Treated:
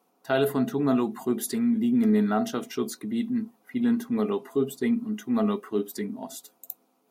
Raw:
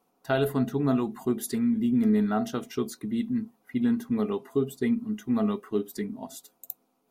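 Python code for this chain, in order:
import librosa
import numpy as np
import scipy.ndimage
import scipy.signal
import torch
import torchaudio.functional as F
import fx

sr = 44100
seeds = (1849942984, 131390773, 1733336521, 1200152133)

y = scipy.signal.sosfilt(scipy.signal.butter(2, 180.0, 'highpass', fs=sr, output='sos'), x)
y = fx.transient(y, sr, attack_db=-3, sustain_db=1)
y = y * 10.0 ** (3.0 / 20.0)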